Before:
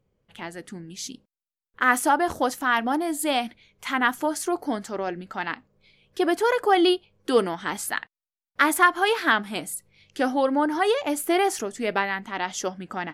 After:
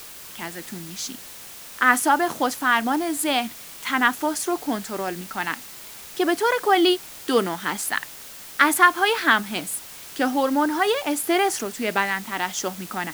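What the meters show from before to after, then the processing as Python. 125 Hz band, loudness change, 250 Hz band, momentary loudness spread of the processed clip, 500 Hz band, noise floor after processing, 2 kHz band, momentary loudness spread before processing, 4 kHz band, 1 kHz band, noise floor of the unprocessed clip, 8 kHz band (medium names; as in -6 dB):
+2.5 dB, +1.5 dB, +1.5 dB, 16 LU, 0.0 dB, -41 dBFS, +3.0 dB, 17 LU, +3.5 dB, +2.0 dB, under -85 dBFS, +4.5 dB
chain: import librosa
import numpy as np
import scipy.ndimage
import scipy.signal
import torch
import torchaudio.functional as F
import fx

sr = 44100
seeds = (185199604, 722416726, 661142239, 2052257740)

y = scipy.signal.sosfilt(scipy.signal.butter(4, 140.0, 'highpass', fs=sr, output='sos'), x)
y = fx.peak_eq(y, sr, hz=510.0, db=-4.5, octaves=1.3)
y = fx.dmg_noise_colour(y, sr, seeds[0], colour='white', level_db=-44.0)
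y = y * librosa.db_to_amplitude(3.5)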